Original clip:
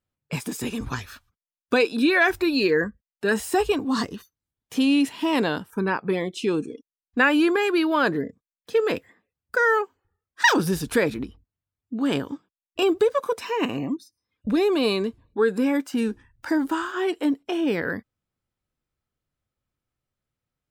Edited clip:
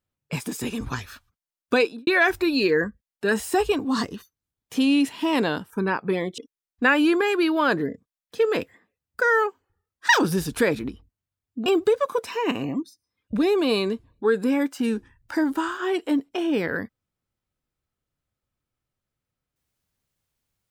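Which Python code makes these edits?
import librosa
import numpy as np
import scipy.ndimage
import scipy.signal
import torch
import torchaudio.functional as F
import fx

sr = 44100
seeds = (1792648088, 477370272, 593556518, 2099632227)

y = fx.studio_fade_out(x, sr, start_s=1.8, length_s=0.27)
y = fx.edit(y, sr, fx.cut(start_s=6.38, length_s=0.35),
    fx.cut(start_s=12.01, length_s=0.79), tone=tone)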